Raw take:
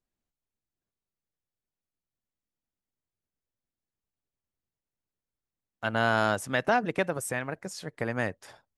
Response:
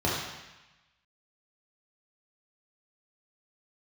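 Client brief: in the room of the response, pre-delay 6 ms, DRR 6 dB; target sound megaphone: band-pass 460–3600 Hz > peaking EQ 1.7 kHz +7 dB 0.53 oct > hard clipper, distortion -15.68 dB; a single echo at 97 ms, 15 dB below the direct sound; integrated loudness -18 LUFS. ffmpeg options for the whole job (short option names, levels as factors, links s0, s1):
-filter_complex "[0:a]aecho=1:1:97:0.178,asplit=2[s0][s1];[1:a]atrim=start_sample=2205,adelay=6[s2];[s1][s2]afir=irnorm=-1:irlink=0,volume=0.119[s3];[s0][s3]amix=inputs=2:normalize=0,highpass=460,lowpass=3600,equalizer=f=1700:t=o:w=0.53:g=7,asoftclip=type=hard:threshold=0.15,volume=2.82"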